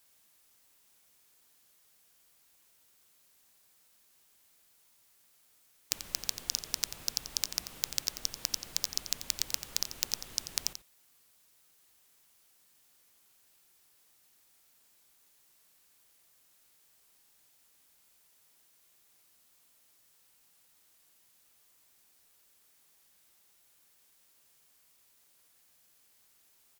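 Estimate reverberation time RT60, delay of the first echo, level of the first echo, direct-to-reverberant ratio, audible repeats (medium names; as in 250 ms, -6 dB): no reverb, 88 ms, -11.5 dB, no reverb, 1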